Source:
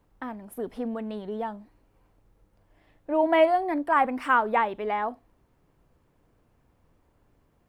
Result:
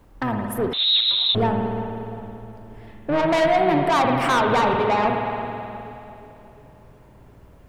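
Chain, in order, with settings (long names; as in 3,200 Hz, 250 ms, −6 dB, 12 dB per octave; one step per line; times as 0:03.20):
sub-octave generator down 1 octave, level −4 dB
in parallel at 0 dB: downward compressor, threshold −29 dBFS, peak gain reduction 13.5 dB
on the sum: soft clipping −23.5 dBFS, distortion −7 dB
on a send: feedback echo with a low-pass in the loop 354 ms, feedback 63%, low-pass 1,000 Hz, level −12.5 dB
on the sum: spring reverb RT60 2.8 s, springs 53 ms, chirp 60 ms, DRR 2 dB
0:00.73–0:01.35: voice inversion scrambler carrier 4,000 Hz
level +6.5 dB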